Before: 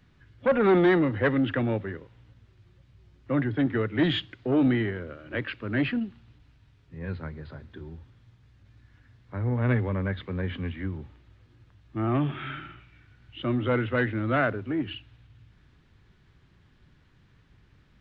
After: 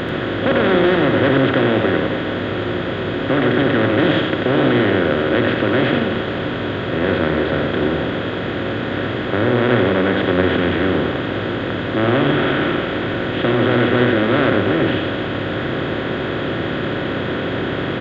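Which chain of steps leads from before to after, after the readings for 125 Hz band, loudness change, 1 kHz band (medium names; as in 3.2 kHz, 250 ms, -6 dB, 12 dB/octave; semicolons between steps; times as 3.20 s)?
+8.5 dB, +9.0 dB, +13.5 dB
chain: spectral levelling over time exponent 0.2; delay 89 ms -5 dB; trim -1 dB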